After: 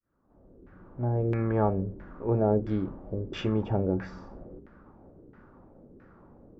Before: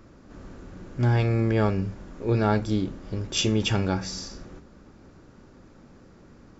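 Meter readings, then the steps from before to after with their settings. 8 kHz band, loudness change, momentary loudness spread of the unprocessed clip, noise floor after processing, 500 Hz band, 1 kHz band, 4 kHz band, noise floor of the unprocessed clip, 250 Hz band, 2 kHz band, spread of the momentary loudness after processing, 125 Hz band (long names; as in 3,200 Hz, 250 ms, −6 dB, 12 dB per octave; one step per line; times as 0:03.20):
can't be measured, −3.5 dB, 17 LU, −61 dBFS, −0.5 dB, −3.0 dB, −16.5 dB, −52 dBFS, −3.0 dB, −11.0 dB, 20 LU, −5.0 dB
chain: fade in at the beginning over 1.62 s
auto-filter low-pass saw down 1.5 Hz 360–1,900 Hz
level −4 dB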